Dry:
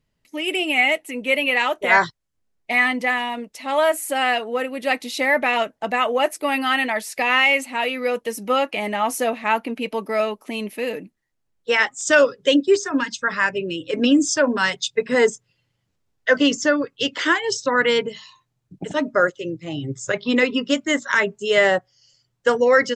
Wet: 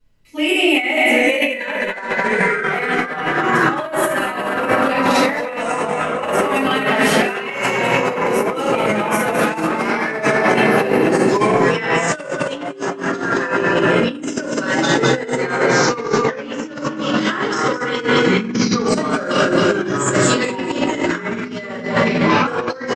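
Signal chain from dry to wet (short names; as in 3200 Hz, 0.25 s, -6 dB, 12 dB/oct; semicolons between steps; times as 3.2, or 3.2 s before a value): 1.04–1.95 comb 2 ms, depth 74%; 18.88–20.22 resonant high shelf 6300 Hz +11 dB, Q 3; on a send: feedback echo 0.212 s, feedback 53%, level -6 dB; on the sum: shoebox room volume 130 m³, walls mixed, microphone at 4.8 m; echoes that change speed 0.62 s, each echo -4 st, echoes 3; negative-ratio compressor -6 dBFS, ratio -0.5; gain -11 dB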